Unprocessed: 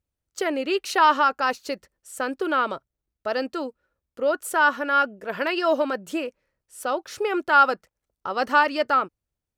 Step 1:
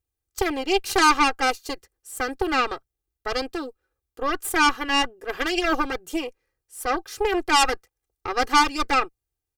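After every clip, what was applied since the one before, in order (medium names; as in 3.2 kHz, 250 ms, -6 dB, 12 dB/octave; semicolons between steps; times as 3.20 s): Chebyshev shaper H 6 -11 dB, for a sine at -6 dBFS; treble shelf 7.7 kHz +8.5 dB; comb 2.5 ms, depth 90%; trim -4.5 dB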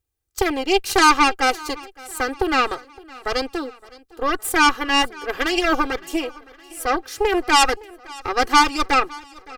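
feedback delay 564 ms, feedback 54%, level -22 dB; trim +3.5 dB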